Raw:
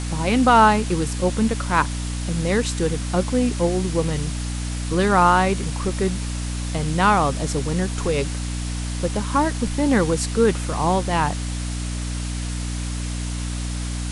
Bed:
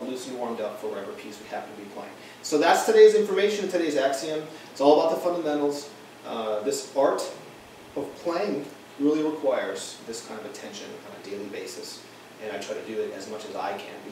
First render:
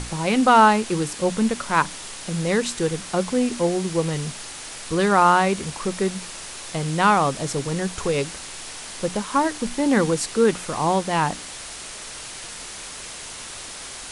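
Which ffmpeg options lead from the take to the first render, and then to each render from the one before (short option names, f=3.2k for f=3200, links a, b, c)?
-af "bandreject=f=60:t=h:w=6,bandreject=f=120:t=h:w=6,bandreject=f=180:t=h:w=6,bandreject=f=240:t=h:w=6,bandreject=f=300:t=h:w=6"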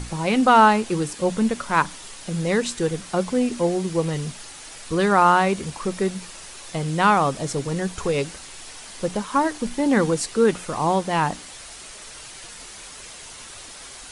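-af "afftdn=nr=6:nf=-37"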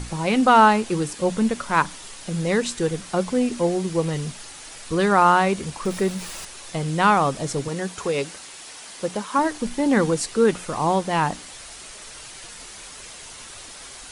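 -filter_complex "[0:a]asettb=1/sr,asplit=3[a][b][c];[a]atrim=end=5.854[d];[b]atrim=start=5.85:end=6.45,asetpts=PTS-STARTPTS,afade=t=in:d=0.004:c=qsin,afade=t=out:st=0.596:d=0.004:c=qsin,aeval=exprs='val(0)+0.5*0.0178*sgn(val(0))':c=same[e];[c]atrim=start=6.446[f];[d][e]acrossfade=d=0.004:c1=hsin:c2=qsin[g];[g][f]acrossfade=d=0.004:c1=qsin:c2=hsin,asettb=1/sr,asplit=3[h][i][j];[h]atrim=end=7.684[k];[i]atrim=start=7.68:end=9.39,asetpts=PTS-STARTPTS,afade=t=in:d=0.004:c=qsin,afade=t=out:st=1.706:d=0.004:c=qsin,highpass=f=220:p=1[l];[j]atrim=start=9.386[m];[k][l]acrossfade=d=0.004:c1=hsin:c2=qsin[n];[n][m]acrossfade=d=0.004:c1=qsin:c2=hsin"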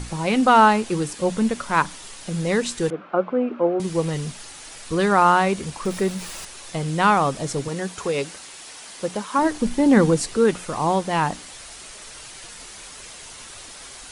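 -filter_complex "[0:a]asettb=1/sr,asplit=3[a][b][c];[a]atrim=end=2.904[d];[b]atrim=start=2.9:end=3.8,asetpts=PTS-STARTPTS,afade=t=in:d=0.004:c=qsin,afade=t=out:st=0.896:d=0.004:c=qsin,highpass=270,equalizer=f=310:t=q:w=4:g=4,equalizer=f=590:t=q:w=4:g=5,equalizer=f=1.3k:t=q:w=4:g=7,equalizer=f=1.9k:t=q:w=4:g=-9,lowpass=f=2.2k:w=0.5412,lowpass=f=2.2k:w=1.3066[e];[c]atrim=start=3.796[f];[d][e]acrossfade=d=0.004:c1=hsin:c2=qsin[g];[g][f]acrossfade=d=0.004:c1=qsin:c2=hsin,asettb=1/sr,asplit=3[h][i][j];[h]atrim=end=9.424[k];[i]atrim=start=9.42:end=10.37,asetpts=PTS-STARTPTS,afade=t=in:d=0.004:c=qsin,afade=t=out:st=0.946:d=0.004:c=qsin,lowshelf=f=460:g=6[l];[j]atrim=start=10.366[m];[k][l]acrossfade=d=0.004:c1=hsin:c2=qsin[n];[n][m]acrossfade=d=0.004:c1=qsin:c2=hsin"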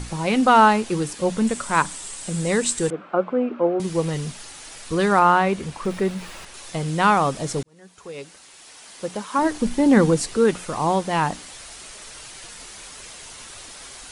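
-filter_complex "[0:a]asettb=1/sr,asplit=3[a][b][c];[a]atrim=end=1.474[d];[b]atrim=start=1.47:end=3.47,asetpts=PTS-STARTPTS,afade=t=in:d=0.004:c=qsin,afade=t=out:st=1.996:d=0.004:c=qsin,equalizer=f=8.1k:w=3:g=12[e];[c]atrim=start=3.466[f];[d][e]acrossfade=d=0.004:c1=hsin:c2=qsin[g];[g][f]acrossfade=d=0.004:c1=qsin:c2=hsin,asettb=1/sr,asplit=3[h][i][j];[h]atrim=end=5.194[k];[i]atrim=start=5.19:end=6.54,asetpts=PTS-STARTPTS,afade=t=in:d=0.004:c=qsin,afade=t=out:st=1.346:d=0.004:c=qsin,acrossover=split=3600[l][m];[m]acompressor=threshold=-44dB:ratio=4:attack=1:release=60[n];[l][n]amix=inputs=2:normalize=0[o];[j]atrim=start=6.536[p];[k][o]acrossfade=d=0.004:c1=hsin:c2=qsin[q];[q][p]acrossfade=d=0.004:c1=qsin:c2=hsin,asplit=2[r][s];[r]atrim=end=7.63,asetpts=PTS-STARTPTS,afade=t=out:st=7.626:d=0.004:c=hsin[t];[s]atrim=start=7.63,asetpts=PTS-STARTPTS,afade=t=in:d=1.94[u];[t][u]concat=n=2:v=0:a=1"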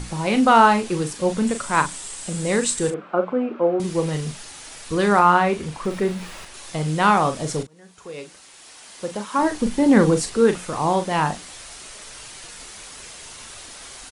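-filter_complex "[0:a]asplit=2[a][b];[b]adelay=39,volume=-9dB[c];[a][c]amix=inputs=2:normalize=0"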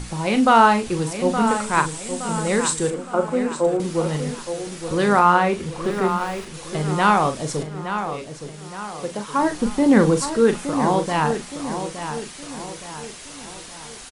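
-filter_complex "[0:a]asplit=2[a][b];[b]adelay=868,lowpass=f=4.5k:p=1,volume=-9dB,asplit=2[c][d];[d]adelay=868,lowpass=f=4.5k:p=1,volume=0.46,asplit=2[e][f];[f]adelay=868,lowpass=f=4.5k:p=1,volume=0.46,asplit=2[g][h];[h]adelay=868,lowpass=f=4.5k:p=1,volume=0.46,asplit=2[i][j];[j]adelay=868,lowpass=f=4.5k:p=1,volume=0.46[k];[a][c][e][g][i][k]amix=inputs=6:normalize=0"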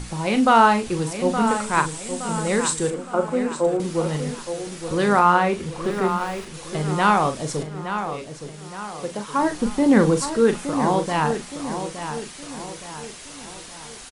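-af "volume=-1dB"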